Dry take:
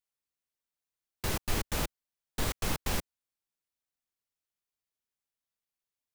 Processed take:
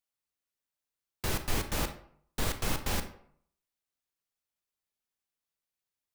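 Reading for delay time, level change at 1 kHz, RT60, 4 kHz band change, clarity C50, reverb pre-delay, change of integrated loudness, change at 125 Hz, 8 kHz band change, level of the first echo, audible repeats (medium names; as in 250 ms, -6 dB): no echo, +1.0 dB, 0.60 s, +0.5 dB, 11.0 dB, 30 ms, +0.5 dB, +0.5 dB, 0.0 dB, no echo, no echo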